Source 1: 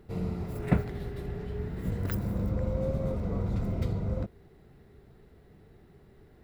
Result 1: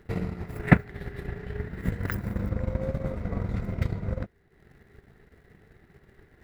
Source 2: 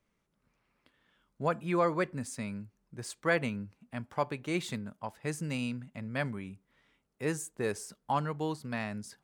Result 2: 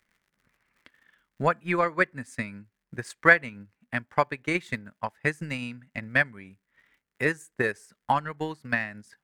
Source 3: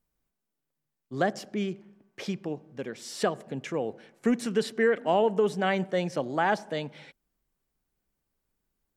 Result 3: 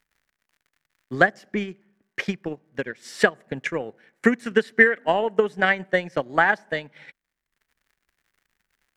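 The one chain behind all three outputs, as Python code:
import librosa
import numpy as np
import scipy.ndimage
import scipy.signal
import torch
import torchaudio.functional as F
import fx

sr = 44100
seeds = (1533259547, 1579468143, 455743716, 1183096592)

y = fx.dmg_crackle(x, sr, seeds[0], per_s=130.0, level_db=-58.0)
y = fx.peak_eq(y, sr, hz=1800.0, db=11.5, octaves=0.87)
y = fx.transient(y, sr, attack_db=10, sustain_db=-8)
y = y * 10.0 ** (-2.0 / 20.0)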